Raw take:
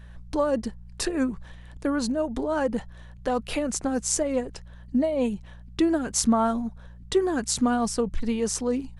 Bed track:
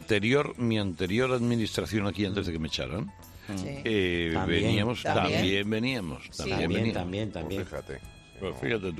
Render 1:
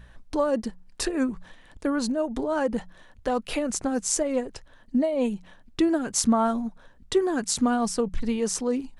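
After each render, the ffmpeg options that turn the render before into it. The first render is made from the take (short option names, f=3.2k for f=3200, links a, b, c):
-af "bandreject=f=60:t=h:w=4,bandreject=f=120:t=h:w=4,bandreject=f=180:t=h:w=4"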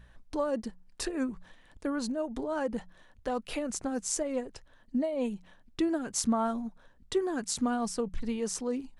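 -af "volume=-6.5dB"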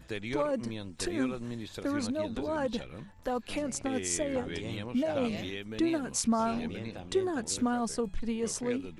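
-filter_complex "[1:a]volume=-12dB[a];[0:a][a]amix=inputs=2:normalize=0"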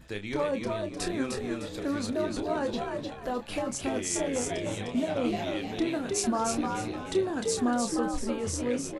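-filter_complex "[0:a]asplit=2[a][b];[b]adelay=29,volume=-8dB[c];[a][c]amix=inputs=2:normalize=0,asplit=5[d][e][f][g][h];[e]adelay=304,afreqshift=73,volume=-4dB[i];[f]adelay=608,afreqshift=146,volume=-14.5dB[j];[g]adelay=912,afreqshift=219,volume=-24.9dB[k];[h]adelay=1216,afreqshift=292,volume=-35.4dB[l];[d][i][j][k][l]amix=inputs=5:normalize=0"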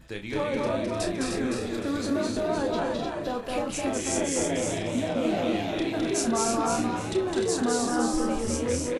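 -filter_complex "[0:a]asplit=2[a][b];[b]adelay=35,volume=-10.5dB[c];[a][c]amix=inputs=2:normalize=0,aecho=1:1:209.9|256.6:0.794|0.562"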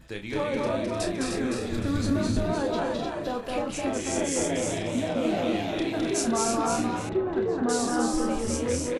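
-filter_complex "[0:a]asplit=3[a][b][c];[a]afade=t=out:st=1.7:d=0.02[d];[b]asubboost=boost=8.5:cutoff=170,afade=t=in:st=1.7:d=0.02,afade=t=out:st=2.52:d=0.02[e];[c]afade=t=in:st=2.52:d=0.02[f];[d][e][f]amix=inputs=3:normalize=0,asettb=1/sr,asplit=3[g][h][i];[g]atrim=end=3.504[j];[h]atrim=start=3.5:end=4.19,asetpts=PTS-STARTPTS,afade=t=in:d=0.004:c=qsin,afade=t=out:st=0.686:d=0.004:c=qsin,highshelf=f=7k:g=-6.5[k];[i]atrim=start=4.186[l];[j][k]acrossfade=d=0.004:c1=hsin:c2=qsin[m];[m][l]acrossfade=d=0.004:c1=qsin:c2=hsin,asettb=1/sr,asplit=3[n][o][p];[n]atrim=end=7.094[q];[o]atrim=start=7.09:end=7.69,asetpts=PTS-STARTPTS,afade=t=in:d=0.004:c=qsin,afade=t=out:st=0.596:d=0.004:c=qsin,lowpass=1.6k[r];[p]atrim=start=7.686[s];[q][r]acrossfade=d=0.004:c1=hsin:c2=qsin[t];[t][s]acrossfade=d=0.004:c1=qsin:c2=hsin"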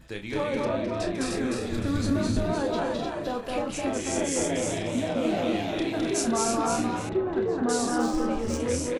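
-filter_complex "[0:a]asettb=1/sr,asplit=3[a][b][c];[a]atrim=end=0.654[d];[b]atrim=start=0.65:end=1.15,asetpts=PTS-STARTPTS,afade=t=in:d=0.004:c=qsin,afade=t=out:st=0.496:d=0.004:c=qsin,adynamicsmooth=sensitivity=1:basefreq=5.5k[e];[c]atrim=start=1.146[f];[d][e]acrossfade=d=0.004:c1=hsin:c2=qsin[g];[g][f]acrossfade=d=0.004:c1=qsin:c2=hsin,asettb=1/sr,asplit=3[h][i][j];[h]atrim=end=7.984[k];[i]atrim=start=7.98:end=8.6,asetpts=PTS-STARTPTS,afade=t=in:d=0.004:c=qsin,afade=t=out:st=0.616:d=0.004:c=qsin,adynamicsmooth=sensitivity=6:basefreq=3.5k[l];[j]atrim=start=8.596[m];[k][l]acrossfade=d=0.004:c1=hsin:c2=qsin[n];[n][m]acrossfade=d=0.004:c1=qsin:c2=hsin"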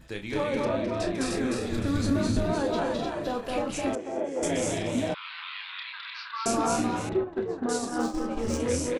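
-filter_complex "[0:a]asettb=1/sr,asplit=3[a][b][c];[a]atrim=end=3.954[d];[b]atrim=start=3.95:end=4.43,asetpts=PTS-STARTPTS,afade=t=in:d=0.004:c=qsin,afade=t=out:st=0.476:d=0.004:c=qsin,bandpass=f=580:t=q:w=1.2[e];[c]atrim=start=4.426[f];[d][e]acrossfade=d=0.004:c1=hsin:c2=qsin[g];[g][f]acrossfade=d=0.004:c1=qsin:c2=hsin,asettb=1/sr,asplit=3[h][i][j];[h]atrim=end=5.144[k];[i]atrim=start=5.14:end=6.46,asetpts=PTS-STARTPTS,afade=t=in:d=0.004:c=qsin,afade=t=out:st=1.316:d=0.004:c=qsin,asuperpass=centerf=2200:order=20:qfactor=0.58[l];[j]atrim=start=6.456[m];[k][l]acrossfade=d=0.004:c1=hsin:c2=qsin[n];[n][m]acrossfade=d=0.004:c1=qsin:c2=hsin,asplit=3[o][p][q];[o]afade=t=out:st=7.23:d=0.02[r];[p]agate=range=-33dB:threshold=-22dB:ratio=3:release=100:detection=peak,afade=t=in:st=7.23:d=0.02,afade=t=out:st=8.36:d=0.02[s];[q]afade=t=in:st=8.36:d=0.02[t];[r][s][t]amix=inputs=3:normalize=0"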